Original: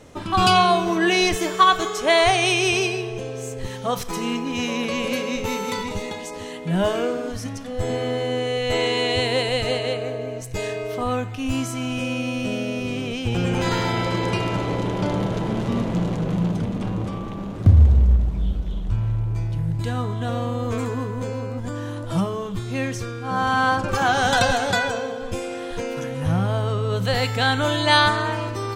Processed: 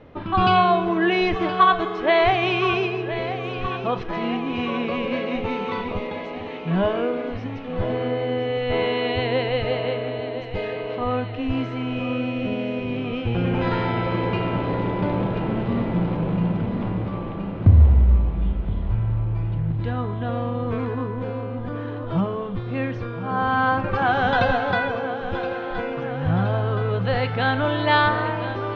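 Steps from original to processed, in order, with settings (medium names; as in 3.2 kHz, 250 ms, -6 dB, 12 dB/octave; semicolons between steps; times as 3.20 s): Bessel low-pass 2.3 kHz, order 6; on a send: thinning echo 1021 ms, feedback 64%, high-pass 160 Hz, level -11.5 dB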